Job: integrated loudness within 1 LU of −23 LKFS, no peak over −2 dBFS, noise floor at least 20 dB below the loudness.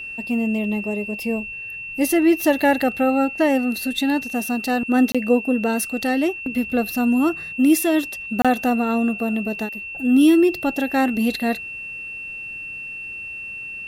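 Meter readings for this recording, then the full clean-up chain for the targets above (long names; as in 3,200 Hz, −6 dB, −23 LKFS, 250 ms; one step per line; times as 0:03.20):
number of dropouts 2; longest dropout 26 ms; interfering tone 2,700 Hz; level of the tone −30 dBFS; integrated loudness −21.0 LKFS; sample peak −6.5 dBFS; target loudness −23.0 LKFS
→ repair the gap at 0:05.12/0:08.42, 26 ms
notch filter 2,700 Hz, Q 30
level −2 dB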